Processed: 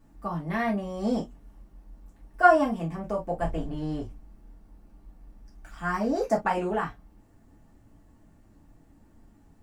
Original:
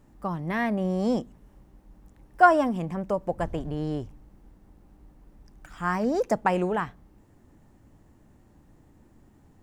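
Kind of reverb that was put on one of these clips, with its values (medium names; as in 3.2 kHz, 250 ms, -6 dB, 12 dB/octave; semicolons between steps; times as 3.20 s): gated-style reverb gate 80 ms falling, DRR -4.5 dB; trim -7 dB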